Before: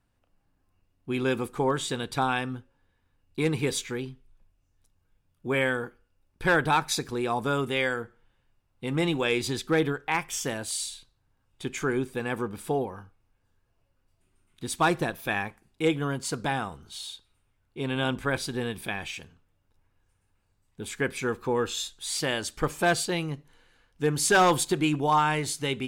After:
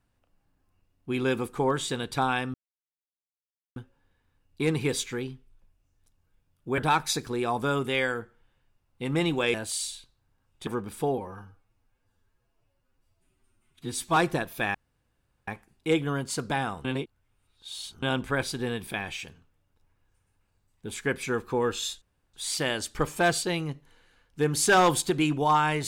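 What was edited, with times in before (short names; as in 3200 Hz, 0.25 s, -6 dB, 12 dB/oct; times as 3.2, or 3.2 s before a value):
2.54 insert silence 1.22 s
5.56–6.6 cut
9.36–10.53 cut
11.66–12.34 cut
12.85–14.84 stretch 1.5×
15.42 insert room tone 0.73 s
16.79–17.97 reverse
21.96 insert room tone 0.32 s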